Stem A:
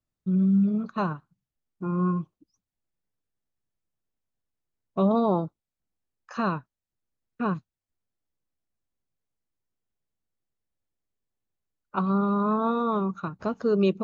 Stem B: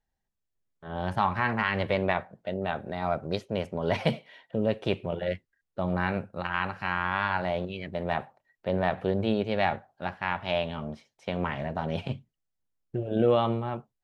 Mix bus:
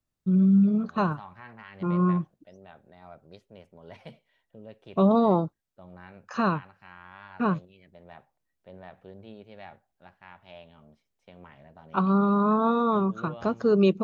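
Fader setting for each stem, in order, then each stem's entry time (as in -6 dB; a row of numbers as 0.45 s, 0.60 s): +2.0 dB, -19.5 dB; 0.00 s, 0.00 s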